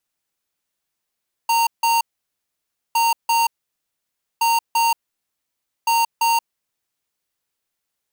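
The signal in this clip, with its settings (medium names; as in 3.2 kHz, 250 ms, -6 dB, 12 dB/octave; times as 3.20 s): beep pattern square 923 Hz, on 0.18 s, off 0.16 s, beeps 2, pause 0.94 s, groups 4, -17 dBFS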